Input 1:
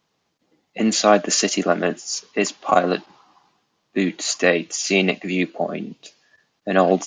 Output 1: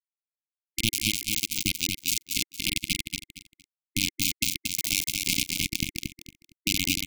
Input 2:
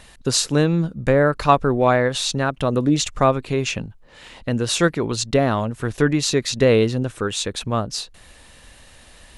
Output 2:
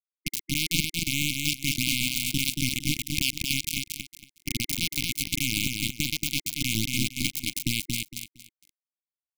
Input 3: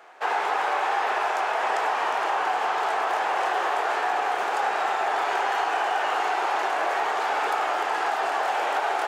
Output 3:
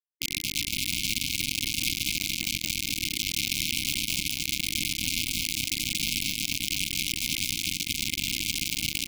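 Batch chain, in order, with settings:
downward compressor 20 to 1, threshold −25 dBFS
brickwall limiter −22 dBFS
bit reduction 4 bits
linear-phase brick-wall band-stop 330–2,100 Hz
repeating echo 230 ms, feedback 24%, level −4 dB
loudness normalisation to −27 LKFS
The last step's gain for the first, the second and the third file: +11.0, +9.0, +7.5 decibels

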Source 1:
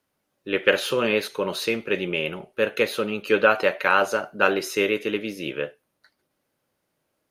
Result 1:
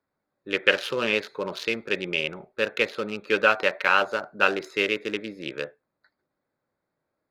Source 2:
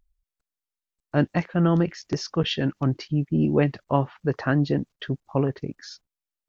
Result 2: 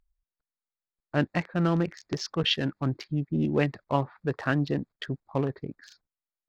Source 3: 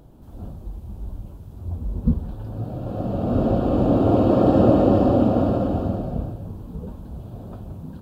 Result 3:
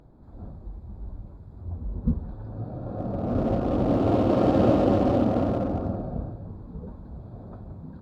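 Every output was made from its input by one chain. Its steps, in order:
adaptive Wiener filter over 15 samples
parametric band 3,300 Hz +8.5 dB 2.6 octaves
level −5 dB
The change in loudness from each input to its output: −1.5, −4.0, −4.5 LU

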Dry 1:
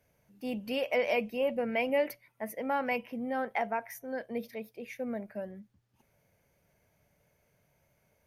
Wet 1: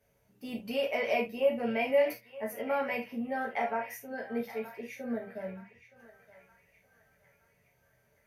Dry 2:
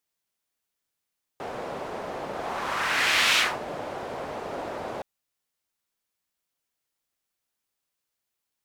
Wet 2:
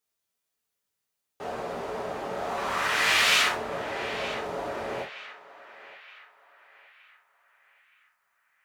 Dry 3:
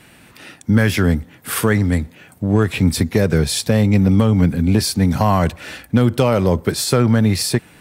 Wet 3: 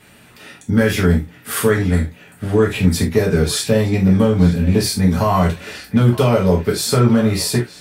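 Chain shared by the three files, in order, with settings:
on a send: feedback echo with a band-pass in the loop 920 ms, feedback 48%, band-pass 1,800 Hz, level −12.5 dB
on the sum: reverb whose tail is shaped and stops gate 100 ms falling, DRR −3 dB
level −4.5 dB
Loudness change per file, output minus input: +0.5, 0.0, +0.5 LU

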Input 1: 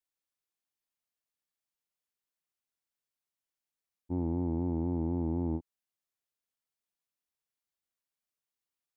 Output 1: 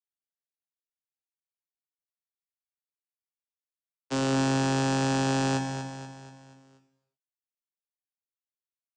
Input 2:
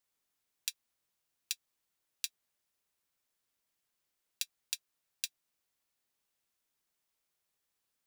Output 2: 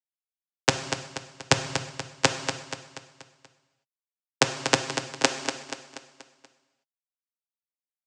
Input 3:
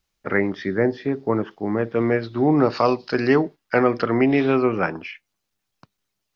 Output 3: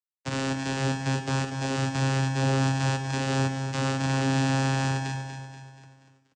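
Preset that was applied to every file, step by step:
spectral envelope flattened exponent 0.1
in parallel at +2 dB: speech leveller
on the sum: fuzz pedal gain 23 dB, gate −32 dBFS
channel vocoder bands 8, saw 134 Hz
on a send: repeating echo 240 ms, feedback 48%, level −8.5 dB
on the sum: reverb whose tail is shaped and stops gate 400 ms falling, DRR 8 dB
loudness normalisation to −27 LKFS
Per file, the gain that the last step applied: −4.0, +12.0, −8.5 decibels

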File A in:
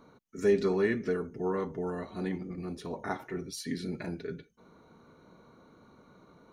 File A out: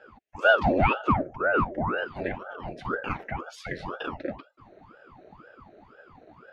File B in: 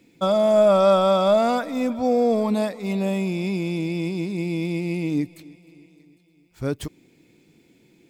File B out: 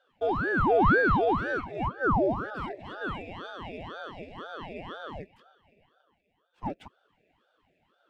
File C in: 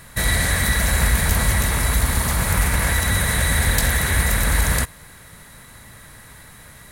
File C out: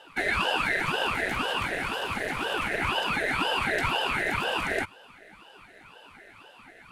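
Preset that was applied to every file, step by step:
formant filter e
ring modulator whose carrier an LFO sweeps 580 Hz, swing 85%, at 2 Hz
loudness normalisation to −27 LKFS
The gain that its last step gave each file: +20.5, +4.5, +10.5 decibels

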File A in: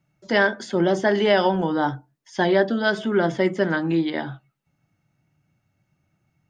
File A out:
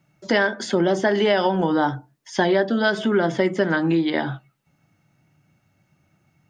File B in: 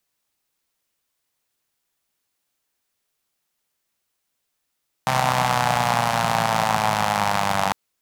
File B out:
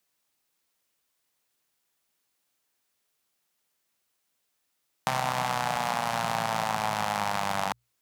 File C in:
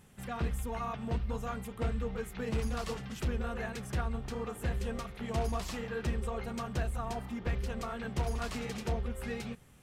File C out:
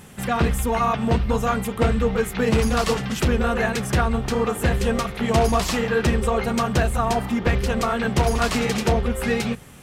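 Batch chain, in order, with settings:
downward compressor 3 to 1, threshold −25 dBFS
low-shelf EQ 73 Hz −7.5 dB
mains-hum notches 60/120 Hz
normalise the peak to −6 dBFS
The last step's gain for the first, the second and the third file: +7.5, −0.5, +16.5 decibels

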